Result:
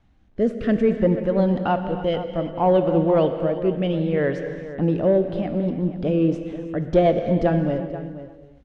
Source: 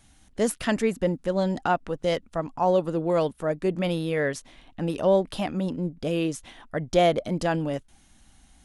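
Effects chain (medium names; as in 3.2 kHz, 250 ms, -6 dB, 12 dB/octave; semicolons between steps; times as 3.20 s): 1.48–3.97 s: peaking EQ 3 kHz +11.5 dB 0.3 oct; waveshaping leveller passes 1; rotary cabinet horn 0.6 Hz, later 8 Hz, at 5.84 s; bit crusher 11-bit; tape spacing loss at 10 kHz 36 dB; echo from a far wall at 83 m, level -13 dB; reverberation, pre-delay 3 ms, DRR 7.5 dB; trim +4 dB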